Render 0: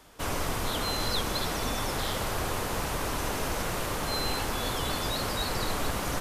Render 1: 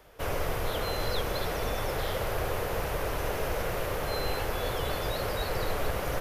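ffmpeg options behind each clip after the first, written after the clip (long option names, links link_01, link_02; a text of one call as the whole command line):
ffmpeg -i in.wav -af "equalizer=frequency=250:width_type=o:width=1:gain=-10,equalizer=frequency=500:width_type=o:width=1:gain=6,equalizer=frequency=1000:width_type=o:width=1:gain=-5,equalizer=frequency=4000:width_type=o:width=1:gain=-5,equalizer=frequency=8000:width_type=o:width=1:gain=-11,volume=1.5dB" out.wav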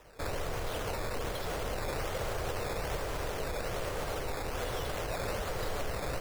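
ffmpeg -i in.wav -af "alimiter=level_in=1.5dB:limit=-24dB:level=0:latency=1:release=119,volume=-1.5dB,acrusher=samples=10:mix=1:aa=0.000001:lfo=1:lforange=10:lforate=1.2" out.wav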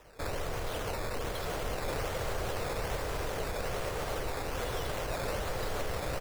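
ffmpeg -i in.wav -af "aecho=1:1:1166:0.398" out.wav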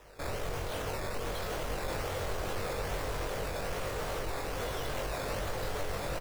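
ffmpeg -i in.wav -filter_complex "[0:a]asoftclip=type=tanh:threshold=-30dB,asplit=2[link_01][link_02];[link_02]adelay=21,volume=-3.5dB[link_03];[link_01][link_03]amix=inputs=2:normalize=0" out.wav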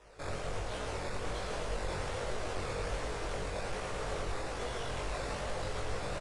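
ffmpeg -i in.wav -filter_complex "[0:a]flanger=delay=16:depth=5.9:speed=1.3,asplit=2[link_01][link_02];[link_02]aecho=0:1:112:0.531[link_03];[link_01][link_03]amix=inputs=2:normalize=0,aresample=22050,aresample=44100" out.wav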